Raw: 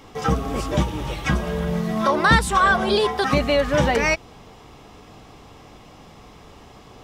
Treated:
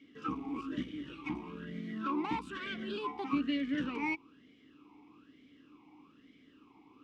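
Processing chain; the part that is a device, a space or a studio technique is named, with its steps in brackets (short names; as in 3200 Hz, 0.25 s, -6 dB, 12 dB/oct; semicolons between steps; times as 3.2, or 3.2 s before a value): talk box (tube stage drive 15 dB, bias 0.55; vowel sweep i-u 1.1 Hz)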